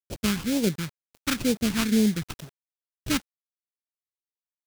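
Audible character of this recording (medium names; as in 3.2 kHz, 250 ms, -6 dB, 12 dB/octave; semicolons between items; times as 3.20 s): aliases and images of a low sample rate 1.9 kHz, jitter 20%; phasing stages 2, 2.1 Hz, lowest notch 520–1300 Hz; a quantiser's noise floor 8-bit, dither none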